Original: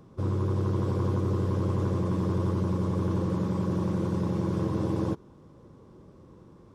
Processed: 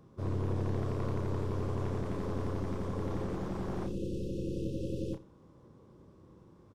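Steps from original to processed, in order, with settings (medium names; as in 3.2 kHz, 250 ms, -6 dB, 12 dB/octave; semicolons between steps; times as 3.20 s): one-sided wavefolder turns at -28 dBFS; spectral selection erased 3.86–5.14 s, 560–2500 Hz; doubling 31 ms -6 dB; delay 84 ms -19 dB; trim -6.5 dB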